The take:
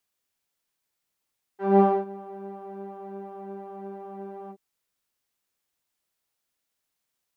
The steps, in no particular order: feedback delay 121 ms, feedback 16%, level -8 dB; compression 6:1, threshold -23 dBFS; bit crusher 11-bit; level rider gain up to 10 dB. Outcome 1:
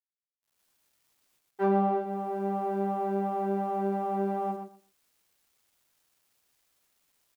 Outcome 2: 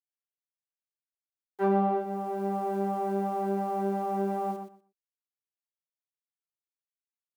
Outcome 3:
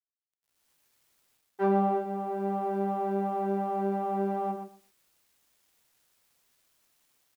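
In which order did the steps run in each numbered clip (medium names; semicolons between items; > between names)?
level rider > bit crusher > compression > feedback delay; bit crusher > level rider > compression > feedback delay; level rider > compression > feedback delay > bit crusher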